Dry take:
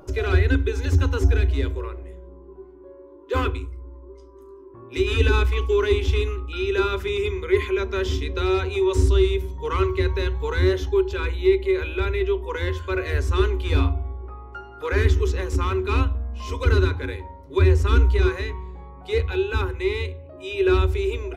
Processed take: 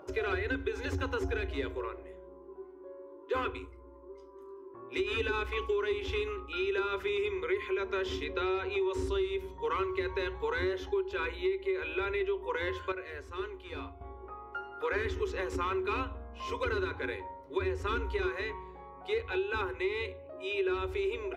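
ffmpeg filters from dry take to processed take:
-filter_complex "[0:a]asettb=1/sr,asplit=3[a][b][c];[a]atrim=end=8.244[d];[b]atrim=start=8.24:end=8.81,asetpts=PTS-STARTPTS,afade=t=in:d=0.004:c=qsin,afade=t=out:st=0.566:d=0.004:c=qsin,lowpass=5.4k[e];[c]atrim=start=8.806[f];[d][e]acrossfade=d=0.004:c1=hsin:c2=qsin[g];[g][f]acrossfade=d=0.004:c1=qsin:c2=hsin,asplit=3[h][i][j];[h]atrim=end=12.922[k];[i]atrim=start=12.918:end=14.012,asetpts=PTS-STARTPTS,volume=-11dB[l];[j]atrim=start=14.008[m];[k][l]acrossfade=d=0.004:c1=hsin:c2=hsin[n];[n][m]acrossfade=d=0.004:c1=hsin:c2=hsin,highpass=59,bass=f=250:g=-14,treble=f=4k:g=-10,acompressor=threshold=-27dB:ratio=6,volume=-1.5dB"

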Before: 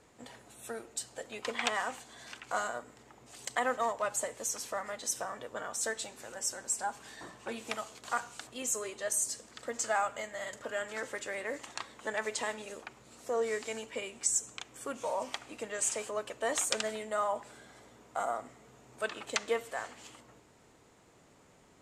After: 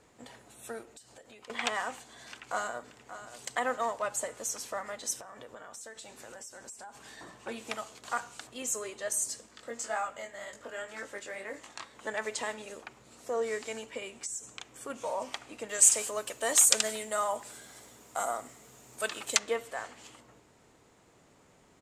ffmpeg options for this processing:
-filter_complex "[0:a]asettb=1/sr,asplit=3[a][b][c];[a]atrim=end=0.834[d];[b]atrim=start=0.83:end=1.5,asetpts=PTS-STARTPTS,afade=t=in:d=0.004:c=qsin,afade=t=out:st=0.666:d=0.004:c=qsin,acompressor=threshold=-49dB:ratio=8:attack=3.2:release=140:knee=1:detection=peak[e];[c]atrim=start=1.496[f];[d][e]acrossfade=d=0.004:c1=hsin:c2=qsin[g];[g][f]acrossfade=d=0.004:c1=qsin:c2=hsin,asplit=2[h][i];[i]afade=t=in:st=2.25:d=0.01,afade=t=out:st=3.41:d=0.01,aecho=0:1:580|1160|1740|2320|2900:0.251189|0.113035|0.0508657|0.0228896|0.0103003[j];[h][j]amix=inputs=2:normalize=0,asettb=1/sr,asplit=3[k][l][m];[k]atrim=end=5.154[n];[l]atrim=start=5.15:end=7.41,asetpts=PTS-STARTPTS,afade=t=in:d=0.004:c=qsin,afade=t=out:st=2.256:d=0.004:c=qsin,acompressor=threshold=-42dB:ratio=12:attack=3.2:release=140:knee=1:detection=peak[o];[m]atrim=start=7.406[p];[n][o]acrossfade=d=0.004:c1=hsin:c2=qsin[q];[q][p]acrossfade=d=0.004:c1=qsin:c2=hsin,asplit=3[r][s][t];[r]afade=t=out:st=9.46:d=0.02[u];[s]flanger=delay=18.5:depth=3.4:speed=1.9,afade=t=in:st=9.46:d=0.02,afade=t=out:st=11.93:d=0.02[v];[t]afade=t=in:st=11.93:d=0.02[w];[u][v][w]amix=inputs=3:normalize=0,asettb=1/sr,asplit=3[x][y][z];[x]atrim=end=13.974[aa];[y]atrim=start=13.97:end=14.9,asetpts=PTS-STARTPTS,afade=t=in:d=0.004:c=qsin,afade=t=out:st=0.926:d=0.004:c=qsin,acompressor=threshold=-35dB:ratio=4:attack=3.2:release=140:knee=1:detection=peak[ab];[z]atrim=start=14.896[ac];[aa][ab]acrossfade=d=0.004:c1=hsin:c2=qsin[ad];[ad][ac]acrossfade=d=0.004:c1=qsin:c2=hsin,asettb=1/sr,asplit=3[ae][af][ag];[ae]atrim=end=15.694[ah];[af]atrim=start=15.69:end=19.39,asetpts=PTS-STARTPTS,afade=t=in:d=0.004:c=qsin,afade=t=out:st=3.696:d=0.004:c=qsin,aemphasis=mode=production:type=75kf[ai];[ag]atrim=start=19.386[aj];[ah][ai]acrossfade=d=0.004:c1=hsin:c2=qsin[ak];[ak][aj]acrossfade=d=0.004:c1=qsin:c2=hsin"

